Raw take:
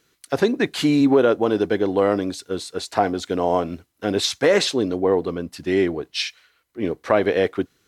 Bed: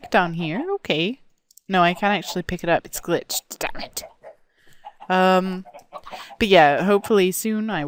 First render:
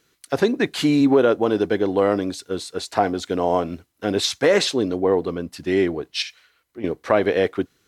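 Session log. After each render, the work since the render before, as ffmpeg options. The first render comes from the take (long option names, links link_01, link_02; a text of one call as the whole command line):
ffmpeg -i in.wav -filter_complex "[0:a]asettb=1/sr,asplit=3[link_01][link_02][link_03];[link_01]atrim=end=6.224[link_04];[link_02]atrim=start=6.22:end=6.84,asetpts=PTS-STARTPTS,afade=type=in:duration=0.004:curve=qsin,afade=type=out:start_time=0.616:duration=0.004:curve=qsin,acompressor=threshold=-29dB:ratio=6:attack=3.2:release=140:knee=1:detection=peak[link_05];[link_03]atrim=start=6.836[link_06];[link_04][link_05]acrossfade=duration=0.004:curve1=hsin:curve2=qsin[link_07];[link_07][link_06]acrossfade=duration=0.004:curve1=qsin:curve2=hsin" out.wav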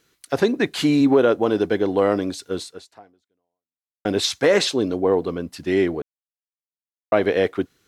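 ffmpeg -i in.wav -filter_complex "[0:a]asettb=1/sr,asplit=3[link_01][link_02][link_03];[link_01]atrim=end=4.694[link_04];[link_02]atrim=start=4.69:end=5.3,asetpts=PTS-STARTPTS,afade=type=in:duration=0.004:curve=qsin,afade=type=out:start_time=0.606:duration=0.004:curve=qsin,bandreject=frequency=1900:width=11[link_05];[link_03]atrim=start=5.296[link_06];[link_04][link_05]acrossfade=duration=0.004:curve1=hsin:curve2=qsin[link_07];[link_07][link_06]acrossfade=duration=0.004:curve1=qsin:curve2=hsin,asplit=4[link_08][link_09][link_10][link_11];[link_08]atrim=end=4.05,asetpts=PTS-STARTPTS,afade=type=out:start_time=2.62:duration=1.43:curve=exp[link_12];[link_09]atrim=start=4.05:end=6.02,asetpts=PTS-STARTPTS,afade=type=in:duration=0.004:curve=hsin,afade=type=out:start_time=1.966:duration=0.004:curve=hsin[link_13];[link_10]atrim=start=6.02:end=7.12,asetpts=PTS-STARTPTS,volume=0[link_14];[link_11]atrim=start=7.12,asetpts=PTS-STARTPTS,afade=type=in:duration=0.004:curve=hsin[link_15];[link_12][link_13][link_14][link_15]concat=n=4:v=0:a=1" out.wav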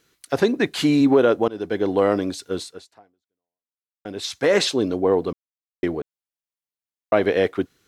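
ffmpeg -i in.wav -filter_complex "[0:a]asplit=6[link_01][link_02][link_03][link_04][link_05][link_06];[link_01]atrim=end=1.48,asetpts=PTS-STARTPTS,afade=type=out:start_time=1.476:duration=0.004:curve=hsin:silence=0.105925[link_07];[link_02]atrim=start=1.48:end=3.16,asetpts=PTS-STARTPTS,afade=type=in:duration=0.4:silence=0.105925,afade=type=out:start_time=1.25:duration=0.43:silence=0.281838[link_08];[link_03]atrim=start=3.16:end=4.16,asetpts=PTS-STARTPTS,volume=-11dB[link_09];[link_04]atrim=start=4.16:end=5.33,asetpts=PTS-STARTPTS,afade=type=in:duration=0.43:silence=0.281838,afade=type=out:start_time=1.166:duration=0.004:curve=hsin[link_10];[link_05]atrim=start=5.33:end=5.83,asetpts=PTS-STARTPTS,volume=0[link_11];[link_06]atrim=start=5.83,asetpts=PTS-STARTPTS,afade=type=in:duration=0.004:curve=hsin[link_12];[link_07][link_08][link_09][link_10][link_11][link_12]concat=n=6:v=0:a=1" out.wav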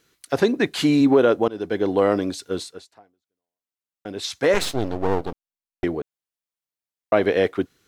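ffmpeg -i in.wav -filter_complex "[0:a]asettb=1/sr,asplit=3[link_01][link_02][link_03];[link_01]atrim=end=4.544[link_04];[link_02]atrim=start=4.54:end=5.84,asetpts=PTS-STARTPTS,afade=type=in:duration=0.004:curve=qsin,afade=type=out:start_time=1.296:duration=0.004:curve=qsin,aeval=exprs='max(val(0),0)':channel_layout=same[link_05];[link_03]atrim=start=5.836[link_06];[link_04][link_05]acrossfade=duration=0.004:curve1=hsin:curve2=qsin[link_07];[link_07][link_06]acrossfade=duration=0.004:curve1=qsin:curve2=hsin" out.wav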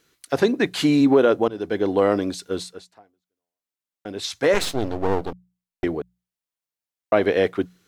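ffmpeg -i in.wav -af "bandreject=frequency=60:width_type=h:width=6,bandreject=frequency=120:width_type=h:width=6,bandreject=frequency=180:width_type=h:width=6" out.wav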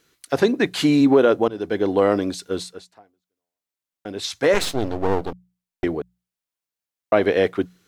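ffmpeg -i in.wav -af "volume=1dB" out.wav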